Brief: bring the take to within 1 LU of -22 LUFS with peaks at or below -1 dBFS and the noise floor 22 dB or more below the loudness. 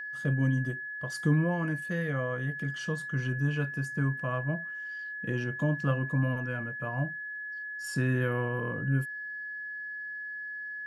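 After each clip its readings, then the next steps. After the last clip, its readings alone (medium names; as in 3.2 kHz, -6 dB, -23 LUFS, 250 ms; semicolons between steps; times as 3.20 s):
steady tone 1.7 kHz; tone level -36 dBFS; loudness -31.5 LUFS; peak level -15.0 dBFS; loudness target -22.0 LUFS
-> band-stop 1.7 kHz, Q 30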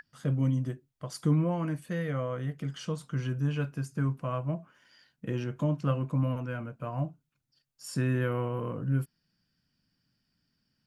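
steady tone not found; loudness -32.0 LUFS; peak level -15.5 dBFS; loudness target -22.0 LUFS
-> trim +10 dB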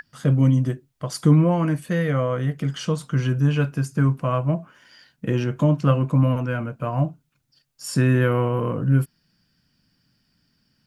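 loudness -22.0 LUFS; peak level -5.5 dBFS; noise floor -71 dBFS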